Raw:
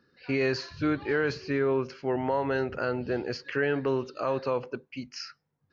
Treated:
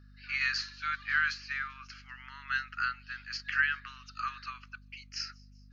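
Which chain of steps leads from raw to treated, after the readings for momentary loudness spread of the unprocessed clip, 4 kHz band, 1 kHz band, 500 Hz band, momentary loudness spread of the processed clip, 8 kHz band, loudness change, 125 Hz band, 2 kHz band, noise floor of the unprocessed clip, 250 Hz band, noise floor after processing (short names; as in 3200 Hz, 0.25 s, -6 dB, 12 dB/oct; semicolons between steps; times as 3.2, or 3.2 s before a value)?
12 LU, +2.0 dB, -4.0 dB, under -40 dB, 18 LU, n/a, -3.5 dB, -16.5 dB, +4.0 dB, -76 dBFS, -28.5 dB, -55 dBFS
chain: Chebyshev high-pass 1200 Hz, order 6; hum 50 Hz, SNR 15 dB; on a send: thin delay 0.195 s, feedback 56%, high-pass 5300 Hz, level -21 dB; on the sum: upward expander 1.5:1, over -43 dBFS; gain +6.5 dB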